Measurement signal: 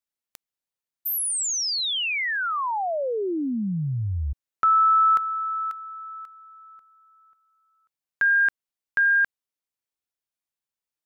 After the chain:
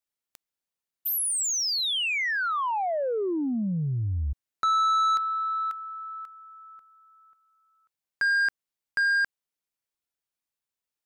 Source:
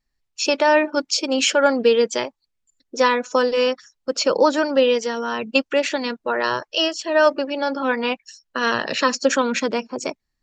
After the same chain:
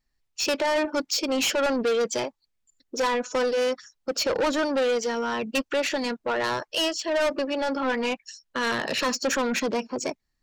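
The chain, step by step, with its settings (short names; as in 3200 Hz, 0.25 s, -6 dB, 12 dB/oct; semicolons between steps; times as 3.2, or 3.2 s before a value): soft clip -20.5 dBFS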